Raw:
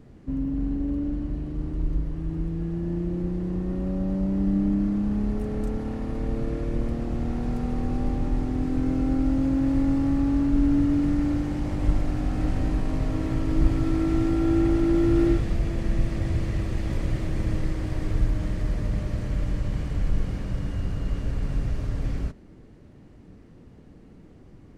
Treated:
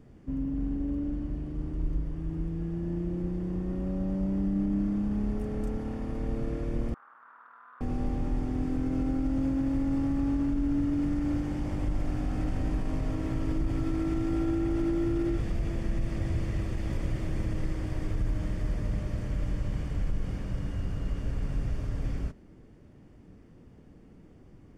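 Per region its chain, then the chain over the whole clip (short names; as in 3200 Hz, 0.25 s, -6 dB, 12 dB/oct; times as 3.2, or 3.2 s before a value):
6.94–7.81 minimum comb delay 0.66 ms + Butterworth band-pass 1300 Hz, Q 2.4 + core saturation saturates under 510 Hz
whole clip: limiter -16.5 dBFS; notch 4000 Hz, Q 9; gain -4 dB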